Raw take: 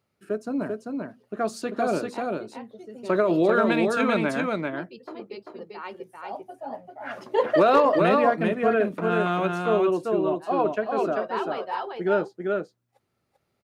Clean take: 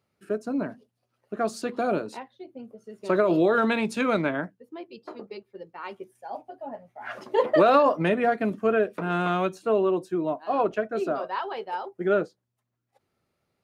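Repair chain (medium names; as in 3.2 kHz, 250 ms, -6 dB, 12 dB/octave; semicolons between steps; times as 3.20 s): clip repair -9 dBFS; inverse comb 392 ms -3.5 dB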